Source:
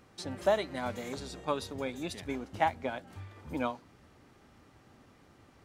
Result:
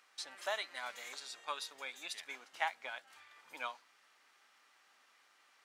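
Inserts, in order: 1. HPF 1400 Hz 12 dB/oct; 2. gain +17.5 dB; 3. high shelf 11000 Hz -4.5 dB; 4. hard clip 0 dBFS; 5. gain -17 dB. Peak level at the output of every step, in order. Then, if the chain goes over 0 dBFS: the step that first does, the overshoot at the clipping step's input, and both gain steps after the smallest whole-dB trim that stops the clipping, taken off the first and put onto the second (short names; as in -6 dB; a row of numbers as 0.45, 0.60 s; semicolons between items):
-19.5, -2.0, -2.0, -2.0, -19.0 dBFS; no overload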